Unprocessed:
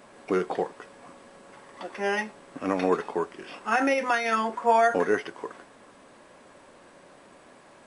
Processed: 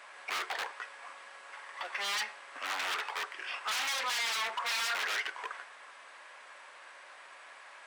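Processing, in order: in parallel at -11 dB: wrapped overs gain 21 dB; on the sum: bell 2100 Hz +3.5 dB 1 oct; wavefolder -26 dBFS; HPF 980 Hz 12 dB/oct; overdrive pedal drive 6 dB, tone 3900 Hz, clips at -22 dBFS; on a send at -20 dB: reverb RT60 0.80 s, pre-delay 35 ms

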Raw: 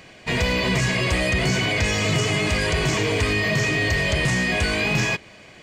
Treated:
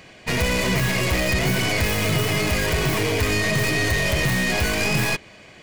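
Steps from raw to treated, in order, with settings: tracing distortion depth 0.21 ms

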